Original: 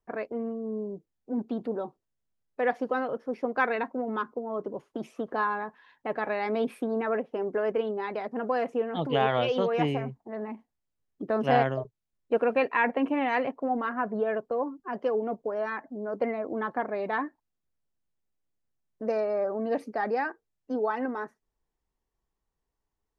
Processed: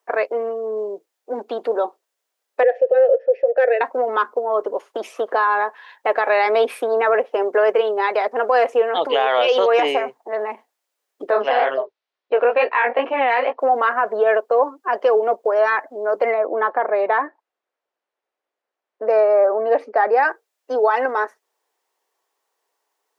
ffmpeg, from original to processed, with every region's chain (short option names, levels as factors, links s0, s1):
-filter_complex "[0:a]asettb=1/sr,asplit=3[s0][s1][s2];[s0]atrim=end=2.634[s3];[s1]atrim=start=2.63:end=3.81,asetpts=PTS-STARTPTS,afade=t=in:d=0.004:c=qsin,afade=t=out:st=1.176:d=0.004:c=qsin,asoftclip=type=hard:threshold=0.158,asplit=3[s4][s5][s6];[s4]bandpass=f=530:t=q:w=8,volume=1[s7];[s5]bandpass=f=1840:t=q:w=8,volume=0.501[s8];[s6]bandpass=f=2480:t=q:w=8,volume=0.355[s9];[s7][s8][s9]amix=inputs=3:normalize=0,equalizer=f=590:w=0.84:g=10.5[s10];[s2]atrim=start=3.806[s11];[s3][s10]acrossfade=d=0.004:c1=hsin:c2=qsin[s12];[s12][s11]acrossfade=d=0.004:c1=qsin:c2=hsin,asettb=1/sr,asplit=3[s13][s14][s15];[s13]atrim=end=11.304[s16];[s14]atrim=start=11.3:end=13.59,asetpts=PTS-STARTPTS,afade=t=in:d=0.004:c=qsin,afade=t=out:st=2.286:d=0.004:c=qsin,lowpass=f=4600:w=0.5412,lowpass=f=4600:w=1.3066,flanger=delay=15.5:depth=5.8:speed=2.2[s17];[s15]atrim=start=13.586[s18];[s16][s17]acrossfade=d=0.004:c1=hsin:c2=qsin[s19];[s19][s18]acrossfade=d=0.004:c1=qsin:c2=hsin,asettb=1/sr,asplit=3[s20][s21][s22];[s20]atrim=end=16.344[s23];[s21]atrim=start=16.34:end=20.23,asetpts=PTS-STARTPTS,afade=t=in:d=0.004:c=qsin,afade=t=out:st=3.886:d=0.004:c=qsin,lowpass=f=3300:p=1,aemphasis=mode=reproduction:type=75kf[s24];[s22]atrim=start=20.226[s25];[s23][s24]acrossfade=d=0.004:c1=hsin:c2=qsin[s26];[s26][s25]acrossfade=d=0.004:c1=qsin:c2=hsin,highpass=f=450:w=0.5412,highpass=f=450:w=1.3066,alimiter=level_in=12.6:limit=0.891:release=50:level=0:latency=1,volume=0.447"